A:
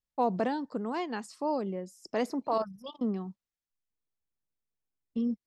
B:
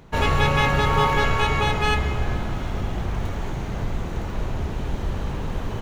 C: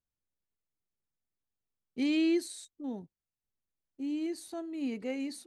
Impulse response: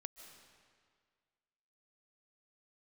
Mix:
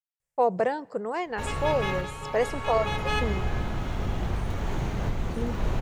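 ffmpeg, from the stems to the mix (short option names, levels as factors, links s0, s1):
-filter_complex "[0:a]equalizer=f=125:t=o:w=1:g=10,equalizer=f=250:t=o:w=1:g=-11,equalizer=f=500:t=o:w=1:g=9,equalizer=f=2000:t=o:w=1:g=7,equalizer=f=4000:t=o:w=1:g=-7,equalizer=f=8000:t=o:w=1:g=9,adelay=200,volume=1,asplit=2[s0][s1];[s1]volume=0.15[s2];[1:a]dynaudnorm=f=210:g=9:m=4.47,adelay=1250,volume=0.282[s3];[2:a]highpass=f=1100:w=0.5412,highpass=f=1100:w=1.3066,volume=0.237,asplit=2[s4][s5];[s5]apad=whole_len=311566[s6];[s3][s6]sidechaincompress=threshold=0.00126:ratio=8:attack=22:release=1030[s7];[3:a]atrim=start_sample=2205[s8];[s2][s8]afir=irnorm=-1:irlink=0[s9];[s0][s7][s4][s9]amix=inputs=4:normalize=0"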